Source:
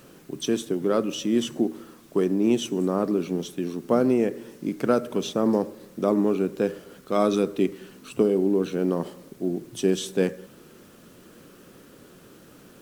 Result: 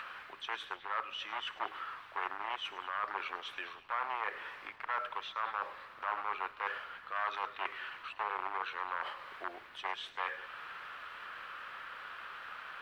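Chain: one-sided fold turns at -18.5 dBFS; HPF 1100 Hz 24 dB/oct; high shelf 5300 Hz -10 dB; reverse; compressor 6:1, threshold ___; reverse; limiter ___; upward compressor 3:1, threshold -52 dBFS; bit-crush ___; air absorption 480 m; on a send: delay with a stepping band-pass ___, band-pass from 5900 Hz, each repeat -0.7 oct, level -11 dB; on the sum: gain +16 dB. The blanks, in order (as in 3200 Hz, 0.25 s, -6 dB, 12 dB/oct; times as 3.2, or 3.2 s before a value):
-46 dBFS, -35.5 dBFS, 11-bit, 0.104 s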